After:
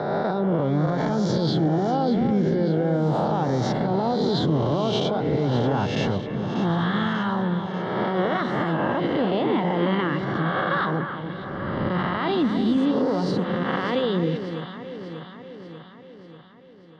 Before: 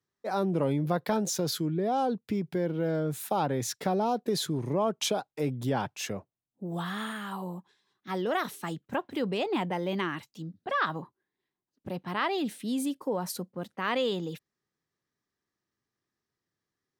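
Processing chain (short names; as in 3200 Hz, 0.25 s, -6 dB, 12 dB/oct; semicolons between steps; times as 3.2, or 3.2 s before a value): spectral swells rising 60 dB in 1.30 s; LPF 4100 Hz 24 dB/oct; low shelf 300 Hz +9.5 dB; notch 2500 Hz, Q 5.3; in parallel at 0 dB: compressor, threshold -38 dBFS, peak gain reduction 19.5 dB; on the sum: limiter -19 dBFS, peak gain reduction 11 dB; on a send: echo with dull and thin repeats by turns 0.295 s, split 2100 Hz, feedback 76%, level -8 dB; on the sum: gain +3.5 dB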